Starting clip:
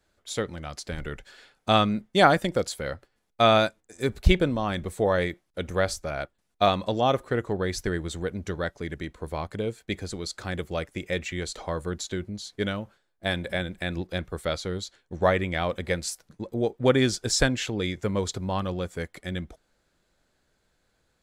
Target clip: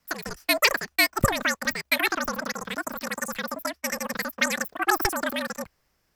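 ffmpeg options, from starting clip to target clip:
-af "asetrate=152145,aresample=44100,afreqshift=-75"

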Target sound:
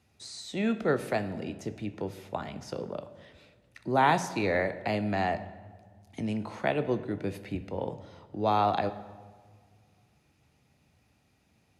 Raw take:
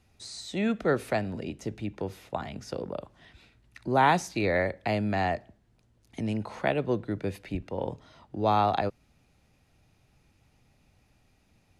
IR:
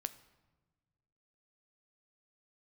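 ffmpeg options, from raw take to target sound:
-filter_complex "[0:a]highpass=83[a];[1:a]atrim=start_sample=2205,asetrate=29988,aresample=44100[b];[a][b]afir=irnorm=-1:irlink=0,volume=-1.5dB"

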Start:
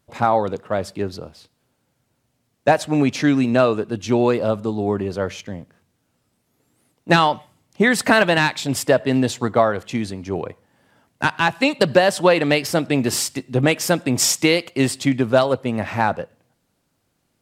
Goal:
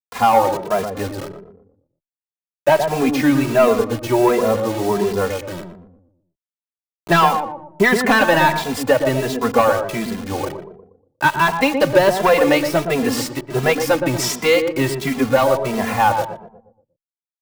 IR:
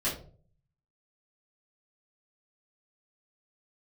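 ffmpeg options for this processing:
-filter_complex "[0:a]equalizer=f=500:t=o:w=1:g=3,equalizer=f=1k:t=o:w=1:g=8,equalizer=f=2k:t=o:w=1:g=4,equalizer=f=8k:t=o:w=1:g=-6,asoftclip=type=tanh:threshold=-5.5dB,acrusher=bits=4:mix=0:aa=0.000001,asplit=2[a][b];[b]adelay=119,lowpass=f=820:p=1,volume=-4.5dB,asplit=2[c][d];[d]adelay=119,lowpass=f=820:p=1,volume=0.47,asplit=2[e][f];[f]adelay=119,lowpass=f=820:p=1,volume=0.47,asplit=2[g][h];[h]adelay=119,lowpass=f=820:p=1,volume=0.47,asplit=2[i][j];[j]adelay=119,lowpass=f=820:p=1,volume=0.47,asplit=2[k][l];[l]adelay=119,lowpass=f=820:p=1,volume=0.47[m];[c][e][g][i][k][m]amix=inputs=6:normalize=0[n];[a][n]amix=inputs=2:normalize=0,asplit=2[o][p];[p]adelay=2.6,afreqshift=1.4[q];[o][q]amix=inputs=2:normalize=1,volume=2dB"

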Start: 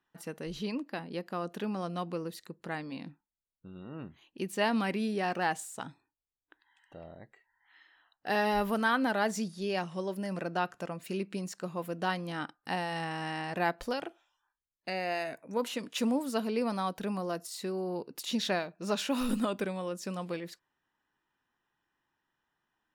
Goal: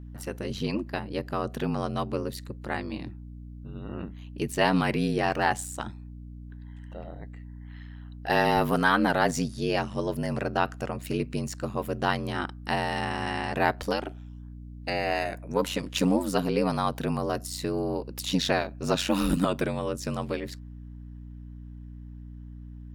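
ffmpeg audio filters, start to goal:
-af "aeval=exprs='val(0)*sin(2*PI*46*n/s)':c=same,acontrast=80,aeval=exprs='val(0)+0.00794*(sin(2*PI*60*n/s)+sin(2*PI*2*60*n/s)/2+sin(2*PI*3*60*n/s)/3+sin(2*PI*4*60*n/s)/4+sin(2*PI*5*60*n/s)/5)':c=same,volume=1.5dB"

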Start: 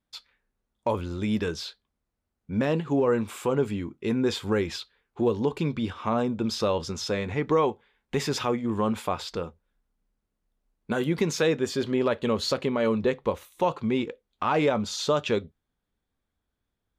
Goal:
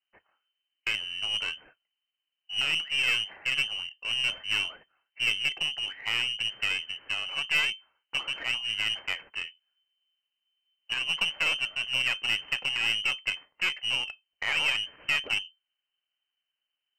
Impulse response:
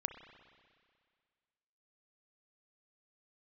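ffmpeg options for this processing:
-af "aeval=exprs='clip(val(0),-1,0.0299)':c=same,lowpass=f=2.6k:t=q:w=0.5098,lowpass=f=2.6k:t=q:w=0.6013,lowpass=f=2.6k:t=q:w=0.9,lowpass=f=2.6k:t=q:w=2.563,afreqshift=-3100,aeval=exprs='0.224*(cos(1*acos(clip(val(0)/0.224,-1,1)))-cos(1*PI/2))+0.00891*(cos(3*acos(clip(val(0)/0.224,-1,1)))-cos(3*PI/2))+0.0178*(cos(4*acos(clip(val(0)/0.224,-1,1)))-cos(4*PI/2))+0.00447*(cos(6*acos(clip(val(0)/0.224,-1,1)))-cos(6*PI/2))+0.00794*(cos(7*acos(clip(val(0)/0.224,-1,1)))-cos(7*PI/2))':c=same"

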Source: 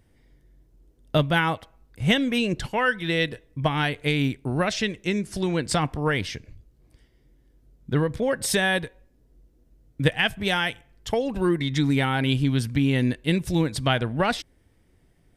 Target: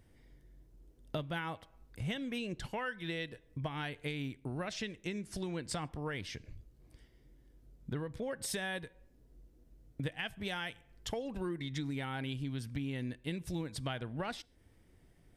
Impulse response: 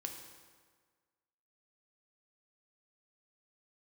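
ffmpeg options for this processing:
-filter_complex "[0:a]acompressor=threshold=-37dB:ratio=3,asplit=2[a][b];[1:a]atrim=start_sample=2205,afade=t=out:st=0.2:d=0.01,atrim=end_sample=9261[c];[b][c]afir=irnorm=-1:irlink=0,volume=-17dB[d];[a][d]amix=inputs=2:normalize=0,volume=-3.5dB"

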